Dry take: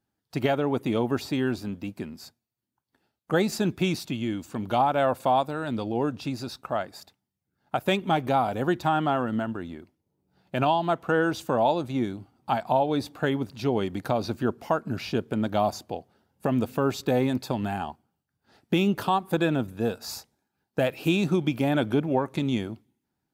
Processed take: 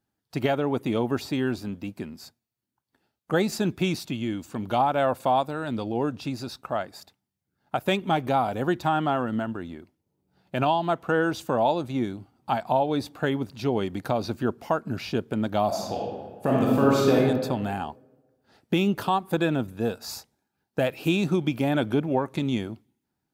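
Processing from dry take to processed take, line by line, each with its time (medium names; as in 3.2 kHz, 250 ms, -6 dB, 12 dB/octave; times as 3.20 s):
15.67–17.14 s: reverb throw, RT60 1.4 s, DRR -4 dB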